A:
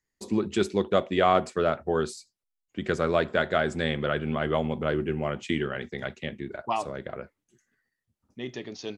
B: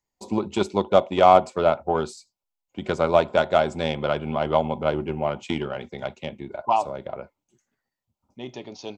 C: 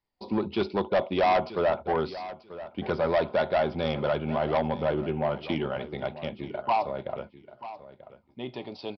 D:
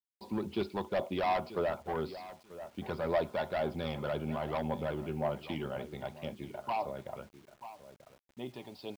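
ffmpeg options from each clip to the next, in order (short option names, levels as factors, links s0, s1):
-af "aeval=exprs='0.447*(cos(1*acos(clip(val(0)/0.447,-1,1)))-cos(1*PI/2))+0.02*(cos(7*acos(clip(val(0)/0.447,-1,1)))-cos(7*PI/2))':c=same,superequalizer=8b=2:9b=2.82:11b=0.398:16b=0.501,volume=1.33"
-af "aresample=11025,asoftclip=type=tanh:threshold=0.119,aresample=44100,aecho=1:1:937|1874:0.178|0.0285"
-af "aphaser=in_gain=1:out_gain=1:delay=1.2:decay=0.31:speed=1.9:type=triangular,acrusher=bits=8:mix=0:aa=0.000001,volume=0.398"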